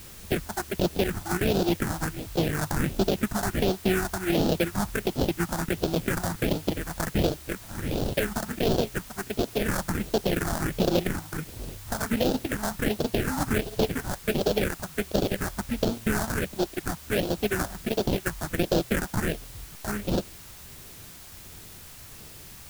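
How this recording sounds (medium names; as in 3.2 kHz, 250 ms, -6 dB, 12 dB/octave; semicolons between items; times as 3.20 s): aliases and images of a low sample rate 1.1 kHz, jitter 20%; phasing stages 4, 1.4 Hz, lowest notch 420–2000 Hz; a quantiser's noise floor 8-bit, dither triangular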